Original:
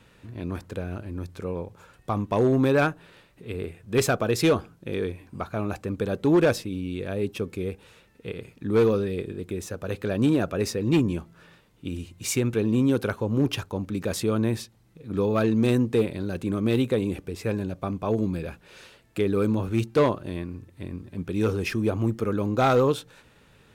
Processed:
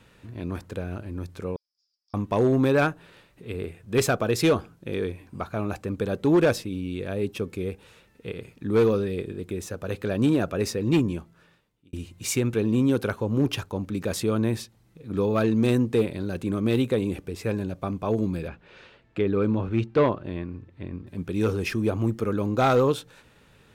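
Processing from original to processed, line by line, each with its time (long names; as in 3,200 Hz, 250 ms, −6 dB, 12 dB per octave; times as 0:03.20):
0:01.56–0:02.14: flat-topped band-pass 5,100 Hz, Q 7.8
0:10.95–0:11.93: fade out
0:18.48–0:21.07: low-pass filter 3,200 Hz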